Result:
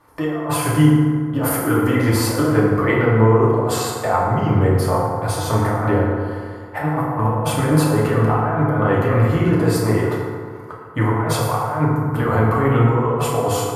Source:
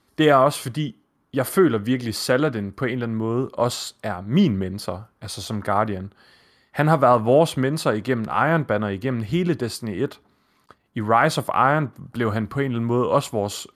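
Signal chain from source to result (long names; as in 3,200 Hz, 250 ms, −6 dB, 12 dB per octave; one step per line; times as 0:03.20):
graphic EQ with 10 bands 250 Hz −9 dB, 500 Hz +4 dB, 1,000 Hz +7 dB, 4,000 Hz −11 dB, 8,000 Hz −3 dB
compressor whose output falls as the input rises −26 dBFS, ratio −1
feedback delay network reverb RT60 2 s, low-frequency decay 1×, high-frequency decay 0.45×, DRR −5.5 dB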